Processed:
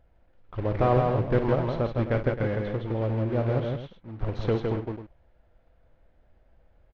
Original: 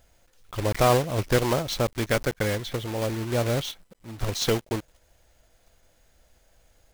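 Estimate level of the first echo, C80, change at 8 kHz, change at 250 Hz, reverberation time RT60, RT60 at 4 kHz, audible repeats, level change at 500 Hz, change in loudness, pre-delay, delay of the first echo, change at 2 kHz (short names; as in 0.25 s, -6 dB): -11.0 dB, none, under -30 dB, +0.5 dB, none, none, 3, -0.5 dB, -1.0 dB, none, 54 ms, -6.5 dB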